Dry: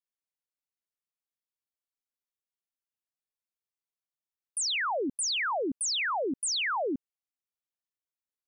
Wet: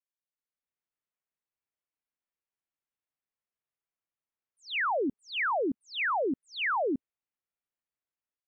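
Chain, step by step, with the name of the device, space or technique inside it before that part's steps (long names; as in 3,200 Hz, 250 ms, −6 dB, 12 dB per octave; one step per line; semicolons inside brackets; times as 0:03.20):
action camera in a waterproof case (low-pass filter 2,700 Hz 24 dB per octave; automatic gain control gain up to 10.5 dB; level −9 dB; AAC 64 kbit/s 32,000 Hz)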